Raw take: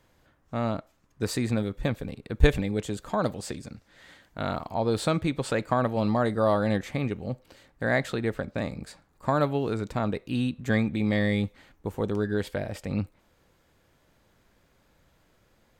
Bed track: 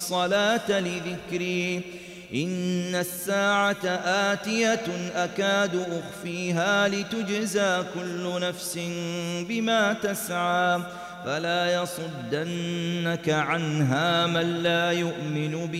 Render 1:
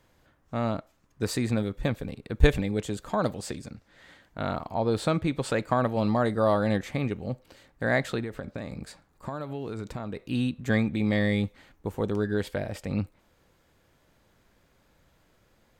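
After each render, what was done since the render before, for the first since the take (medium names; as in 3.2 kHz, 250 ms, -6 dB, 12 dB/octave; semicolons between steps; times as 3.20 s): 3.70–5.31 s: treble shelf 3.5 kHz -4.5 dB; 8.23–10.20 s: compression 12:1, threshold -29 dBFS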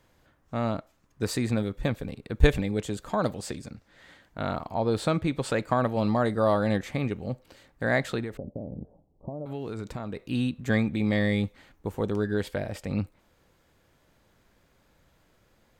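8.37–9.46 s: steep low-pass 730 Hz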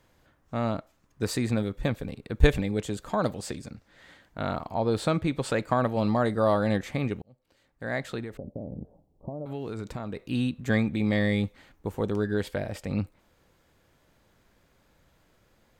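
7.22–8.68 s: fade in linear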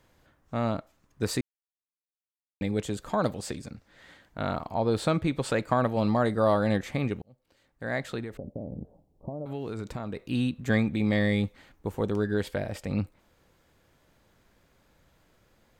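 1.41–2.61 s: mute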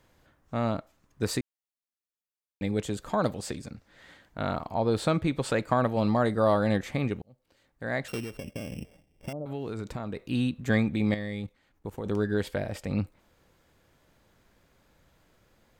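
1.39–2.63 s: gain -3 dB; 8.08–9.33 s: sorted samples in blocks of 16 samples; 11.14–12.06 s: level held to a coarse grid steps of 17 dB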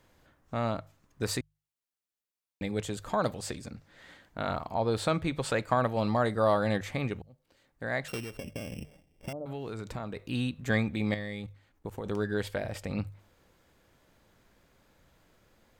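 hum notches 50/100/150 Hz; dynamic bell 250 Hz, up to -5 dB, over -39 dBFS, Q 0.73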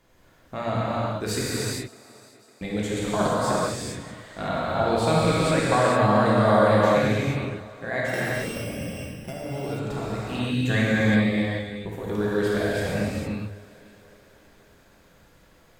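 thinning echo 555 ms, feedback 52%, high-pass 210 Hz, level -21 dB; gated-style reverb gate 490 ms flat, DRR -8 dB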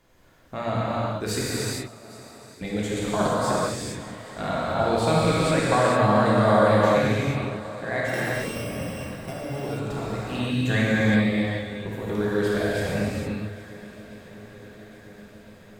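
shuffle delay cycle 1359 ms, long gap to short 1.5:1, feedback 59%, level -20 dB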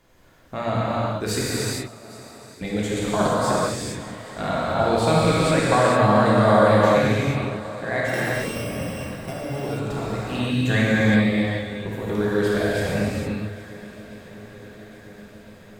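trim +2.5 dB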